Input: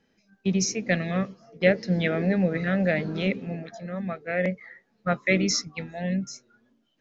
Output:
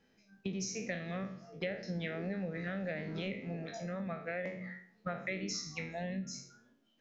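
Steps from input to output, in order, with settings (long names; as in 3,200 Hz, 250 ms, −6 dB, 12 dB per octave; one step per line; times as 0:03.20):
peak hold with a decay on every bin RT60 0.42 s
hum removal 45.5 Hz, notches 8
downward compressor 6 to 1, threshold −33 dBFS, peak gain reduction 17.5 dB
level −3 dB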